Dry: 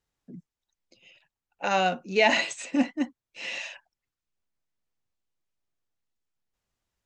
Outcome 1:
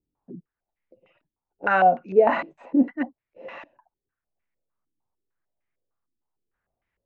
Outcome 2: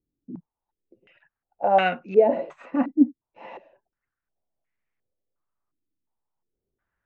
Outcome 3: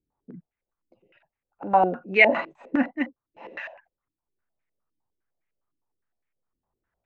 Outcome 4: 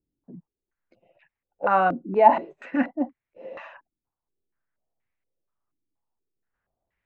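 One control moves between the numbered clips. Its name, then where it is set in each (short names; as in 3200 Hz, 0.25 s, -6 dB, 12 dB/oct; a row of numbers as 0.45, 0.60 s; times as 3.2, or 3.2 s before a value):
stepped low-pass, rate: 6.6, 2.8, 9.8, 4.2 Hz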